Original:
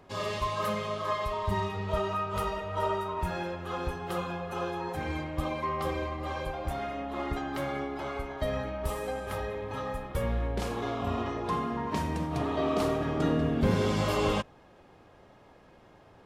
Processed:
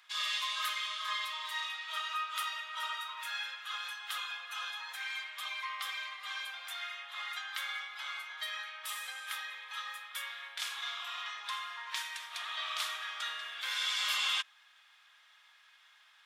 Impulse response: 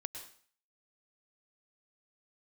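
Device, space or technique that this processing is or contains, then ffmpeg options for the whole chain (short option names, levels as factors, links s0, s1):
headphones lying on a table: -af "highpass=f=1500:w=0.5412,highpass=f=1500:w=1.3066,equalizer=f=3500:t=o:w=0.24:g=8.5,volume=1.5"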